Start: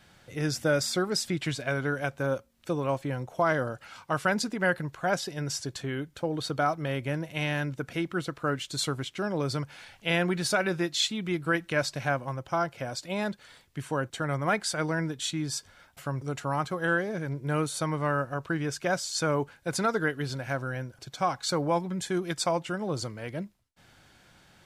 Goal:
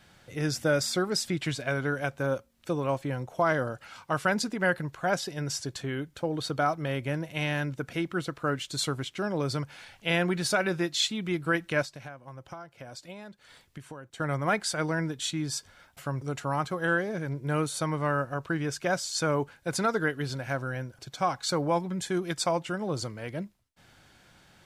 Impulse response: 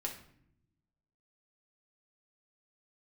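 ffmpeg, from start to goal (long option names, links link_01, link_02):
-filter_complex "[0:a]asettb=1/sr,asplit=3[link_01][link_02][link_03];[link_01]atrim=end=11.824[link_04];[link_02]atrim=start=11.82:end=14.2,asetpts=PTS-STARTPTS,afade=type=in:duration=0.004:curve=qsin,afade=type=out:start_time=2.376:duration=0.004:curve=qsin,acompressor=threshold=-40dB:ratio=12[link_05];[link_03]atrim=start=14.196[link_06];[link_04][link_05]acrossfade=duration=0.004:curve1=hsin:curve2=qsin[link_07];[link_07][link_06]acrossfade=duration=0.004:curve1=qsin:curve2=hsin"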